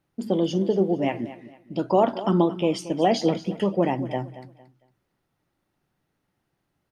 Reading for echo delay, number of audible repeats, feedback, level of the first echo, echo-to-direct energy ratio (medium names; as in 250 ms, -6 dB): 228 ms, 2, 30%, -15.0 dB, -14.5 dB